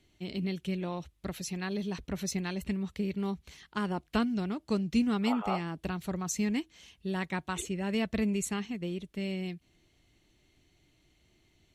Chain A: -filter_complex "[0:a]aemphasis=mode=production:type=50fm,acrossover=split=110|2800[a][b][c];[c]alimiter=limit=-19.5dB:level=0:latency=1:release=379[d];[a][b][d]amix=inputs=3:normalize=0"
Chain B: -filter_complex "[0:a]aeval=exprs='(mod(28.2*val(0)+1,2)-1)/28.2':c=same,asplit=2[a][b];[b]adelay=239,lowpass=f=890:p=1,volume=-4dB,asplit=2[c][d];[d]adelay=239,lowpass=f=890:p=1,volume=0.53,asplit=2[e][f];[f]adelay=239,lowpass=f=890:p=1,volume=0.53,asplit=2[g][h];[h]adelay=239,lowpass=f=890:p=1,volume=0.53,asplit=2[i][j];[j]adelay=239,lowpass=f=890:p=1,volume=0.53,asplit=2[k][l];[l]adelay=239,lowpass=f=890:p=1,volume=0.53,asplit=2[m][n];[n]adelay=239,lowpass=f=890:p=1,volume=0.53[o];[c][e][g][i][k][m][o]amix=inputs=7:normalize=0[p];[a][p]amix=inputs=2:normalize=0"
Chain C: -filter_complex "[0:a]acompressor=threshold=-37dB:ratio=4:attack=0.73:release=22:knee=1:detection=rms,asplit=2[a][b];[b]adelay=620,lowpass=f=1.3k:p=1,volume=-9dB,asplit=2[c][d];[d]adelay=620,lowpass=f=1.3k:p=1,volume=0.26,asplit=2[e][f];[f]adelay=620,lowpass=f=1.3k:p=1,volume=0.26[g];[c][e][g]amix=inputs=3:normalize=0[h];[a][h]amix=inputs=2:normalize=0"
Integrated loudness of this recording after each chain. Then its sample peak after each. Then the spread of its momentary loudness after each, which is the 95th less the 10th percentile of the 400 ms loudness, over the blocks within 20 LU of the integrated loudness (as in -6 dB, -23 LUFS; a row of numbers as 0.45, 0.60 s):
-33.5, -34.5, -41.0 LUFS; -15.0, -24.0, -29.0 dBFS; 8, 7, 7 LU